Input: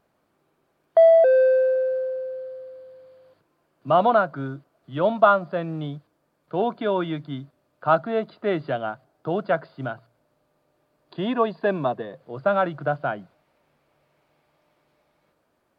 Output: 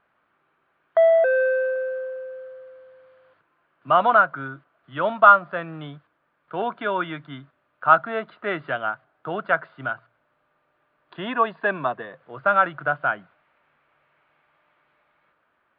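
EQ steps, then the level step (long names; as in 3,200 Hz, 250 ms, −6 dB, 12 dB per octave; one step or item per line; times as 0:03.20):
high-frequency loss of the air 430 metres
parametric band 1,400 Hz +13.5 dB 1.5 octaves
parametric band 3,200 Hz +12.5 dB 1.7 octaves
−6.5 dB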